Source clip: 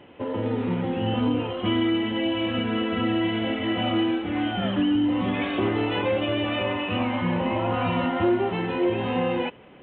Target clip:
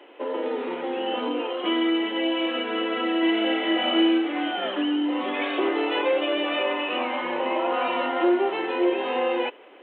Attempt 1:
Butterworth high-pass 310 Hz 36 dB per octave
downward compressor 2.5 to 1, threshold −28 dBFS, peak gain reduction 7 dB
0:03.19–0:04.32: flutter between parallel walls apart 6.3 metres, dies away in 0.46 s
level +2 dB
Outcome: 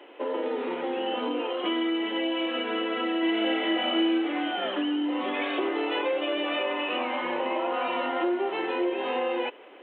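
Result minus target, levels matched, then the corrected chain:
downward compressor: peak gain reduction +7 dB
Butterworth high-pass 310 Hz 36 dB per octave
0:03.19–0:04.32: flutter between parallel walls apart 6.3 metres, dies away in 0.46 s
level +2 dB

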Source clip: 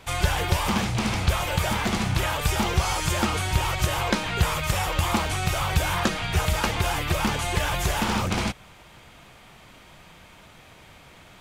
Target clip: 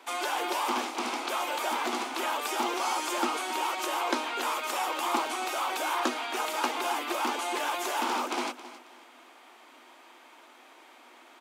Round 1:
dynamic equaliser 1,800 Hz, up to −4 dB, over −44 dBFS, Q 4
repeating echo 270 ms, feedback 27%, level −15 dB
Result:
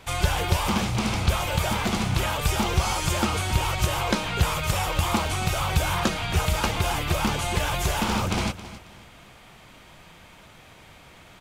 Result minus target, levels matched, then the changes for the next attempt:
250 Hz band +3.0 dB
add after dynamic equaliser: Chebyshev high-pass with heavy ripple 240 Hz, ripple 6 dB

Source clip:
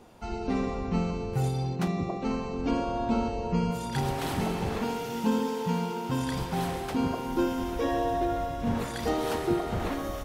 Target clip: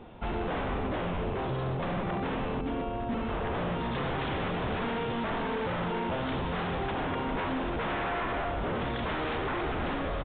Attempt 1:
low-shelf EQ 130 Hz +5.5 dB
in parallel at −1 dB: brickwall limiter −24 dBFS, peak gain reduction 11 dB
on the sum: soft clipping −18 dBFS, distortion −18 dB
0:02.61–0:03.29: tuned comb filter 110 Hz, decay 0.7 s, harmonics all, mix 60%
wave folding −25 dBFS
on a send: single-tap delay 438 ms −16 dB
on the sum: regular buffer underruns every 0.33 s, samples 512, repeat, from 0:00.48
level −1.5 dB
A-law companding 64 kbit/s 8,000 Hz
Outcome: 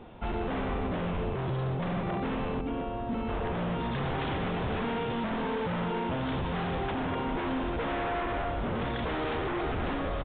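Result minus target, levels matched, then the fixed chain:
soft clipping: distortion +18 dB
low-shelf EQ 130 Hz +5.5 dB
in parallel at −1 dB: brickwall limiter −24 dBFS, peak gain reduction 11 dB
on the sum: soft clipping −7 dBFS, distortion −36 dB
0:02.61–0:03.29: tuned comb filter 110 Hz, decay 0.7 s, harmonics all, mix 60%
wave folding −25 dBFS
on a send: single-tap delay 438 ms −16 dB
on the sum: regular buffer underruns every 0.33 s, samples 512, repeat, from 0:00.48
level −1.5 dB
A-law companding 64 kbit/s 8,000 Hz

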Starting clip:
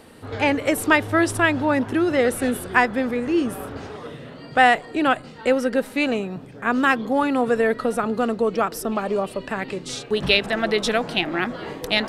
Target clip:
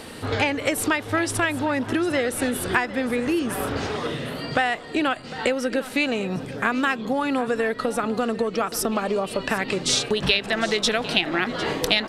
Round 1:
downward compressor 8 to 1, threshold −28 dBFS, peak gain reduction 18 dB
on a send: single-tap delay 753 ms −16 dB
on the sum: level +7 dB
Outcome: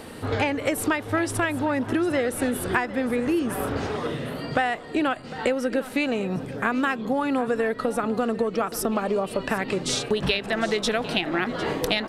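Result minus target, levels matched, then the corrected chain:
4,000 Hz band −4.0 dB
downward compressor 8 to 1, threshold −28 dBFS, peak gain reduction 18 dB
parametric band 4,600 Hz +6 dB 2.6 octaves
on a send: single-tap delay 753 ms −16 dB
on the sum: level +7 dB

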